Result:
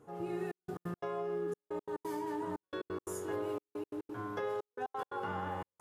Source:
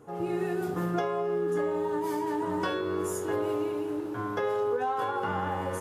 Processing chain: trance gate "xxxxxx..x.x." 176 bpm -60 dB; trim -7.5 dB

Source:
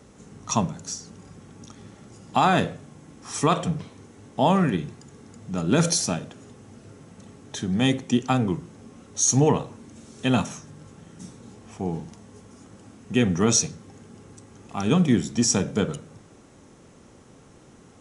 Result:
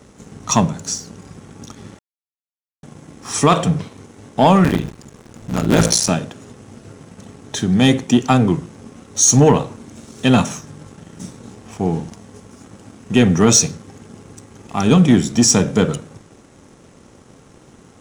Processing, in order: 4.64–6.09 s: cycle switcher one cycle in 3, muted; waveshaping leveller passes 1; 1.99–2.83 s: mute; trim +5.5 dB

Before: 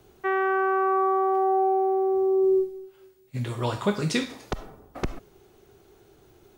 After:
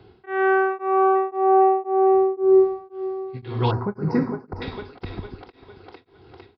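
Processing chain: peaking EQ 93 Hz +13 dB 0.21 oct; comb of notches 600 Hz; two-band feedback delay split 320 Hz, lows 145 ms, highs 454 ms, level -8.5 dB; resampled via 11.025 kHz; 3.71–4.62 s: Butterworth band-stop 3.3 kHz, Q 0.54; tremolo of two beating tones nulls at 1.9 Hz; trim +6.5 dB

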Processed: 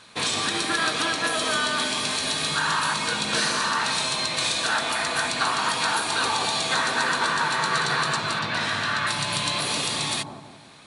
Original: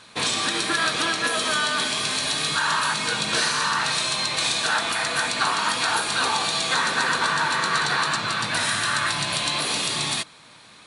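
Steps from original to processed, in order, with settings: 8.39–9.07 s: low-pass 4.7 kHz 12 dB/octave; bucket-brigade echo 173 ms, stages 1024, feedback 45%, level -3.5 dB; trim -1.5 dB

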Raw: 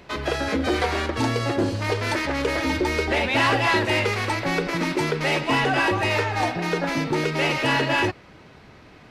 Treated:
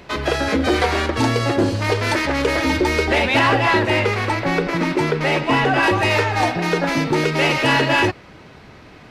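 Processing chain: 3.39–5.83 s: treble shelf 3.5 kHz -8 dB; trim +5 dB

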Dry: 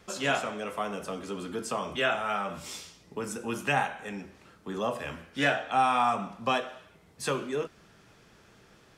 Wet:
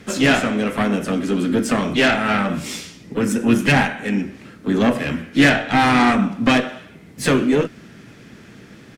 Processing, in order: Chebyshev shaper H 3 -28 dB, 5 -17 dB, 6 -15 dB, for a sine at -12.5 dBFS; harmony voices +3 st -11 dB; ten-band graphic EQ 125 Hz +5 dB, 250 Hz +12 dB, 1 kHz -4 dB, 2 kHz +6 dB; trim +5 dB

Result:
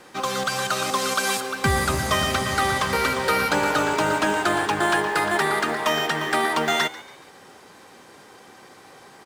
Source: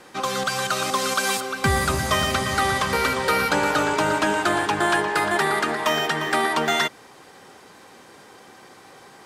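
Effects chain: in parallel at -6 dB: short-mantissa float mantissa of 2-bit; on the sum: frequency-shifting echo 141 ms, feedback 42%, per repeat +82 Hz, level -18 dB; trim -4 dB

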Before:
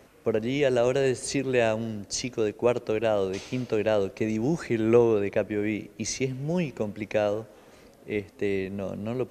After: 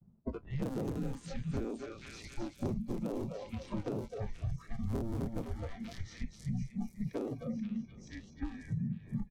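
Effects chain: cycle switcher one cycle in 3, inverted; wind noise 120 Hz -34 dBFS; treble shelf 3.5 kHz -10 dB; feedback delay 255 ms, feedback 56%, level -6 dB; frequency shift -240 Hz; expander -40 dBFS; spectral noise reduction 24 dB; level-controlled noise filter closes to 1.4 kHz, open at -20.5 dBFS; on a send: repeats whose band climbs or falls 481 ms, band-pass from 2.6 kHz, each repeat 0.7 oct, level -6 dB; on the sum: compression 5:1, threshold -40 dBFS, peak gain reduction 21.5 dB; peaking EQ 2.2 kHz -14 dB 2 oct; trim +5.5 dB

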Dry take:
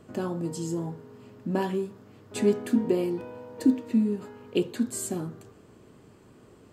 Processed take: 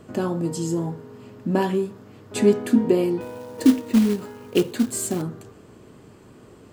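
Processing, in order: 3.21–5.22 s: short-mantissa float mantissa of 2-bit; trim +6 dB

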